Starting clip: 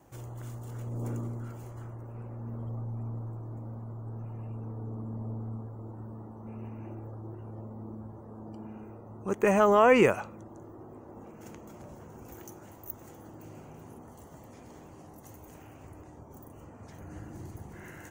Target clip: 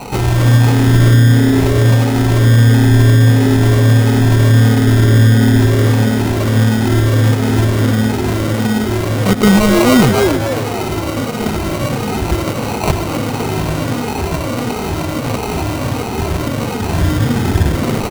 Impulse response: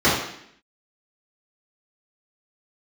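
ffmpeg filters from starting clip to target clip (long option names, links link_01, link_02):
-filter_complex "[0:a]afftfilt=real='re*pow(10,18/40*sin(2*PI*(1*log(max(b,1)*sr/1024/100)/log(2)-(-1.5)*(pts-256)/sr)))':imag='im*pow(10,18/40*sin(2*PI*(1*log(max(b,1)*sr/1024/100)/log(2)-(-1.5)*(pts-256)/sr)))':win_size=1024:overlap=0.75,acrossover=split=180|3000[link_01][link_02][link_03];[link_02]acompressor=threshold=-47dB:ratio=10[link_04];[link_01][link_04][link_03]amix=inputs=3:normalize=0,acrusher=samples=26:mix=1:aa=0.000001,asplit=2[link_05][link_06];[link_06]asplit=4[link_07][link_08][link_09][link_10];[link_07]adelay=260,afreqshift=150,volume=-9dB[link_11];[link_08]adelay=520,afreqshift=300,volume=-17.2dB[link_12];[link_09]adelay=780,afreqshift=450,volume=-25.4dB[link_13];[link_10]adelay=1040,afreqshift=600,volume=-33.5dB[link_14];[link_11][link_12][link_13][link_14]amix=inputs=4:normalize=0[link_15];[link_05][link_15]amix=inputs=2:normalize=0,alimiter=level_in=29.5dB:limit=-1dB:release=50:level=0:latency=1,volume=-1dB"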